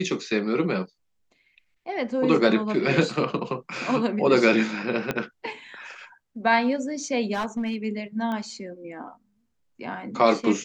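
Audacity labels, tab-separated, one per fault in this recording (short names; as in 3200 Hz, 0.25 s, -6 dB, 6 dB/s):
5.110000	5.110000	pop -11 dBFS
7.330000	7.760000	clipped -23 dBFS
8.320000	8.320000	pop -20 dBFS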